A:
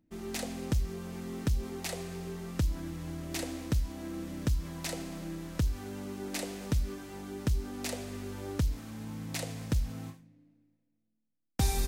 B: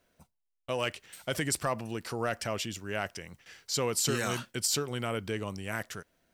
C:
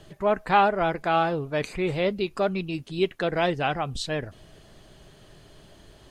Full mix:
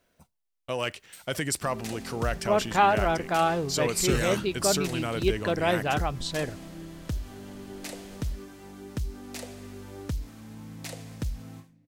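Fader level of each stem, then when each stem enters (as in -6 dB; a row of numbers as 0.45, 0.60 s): -2.5, +1.5, -1.5 dB; 1.50, 0.00, 2.25 s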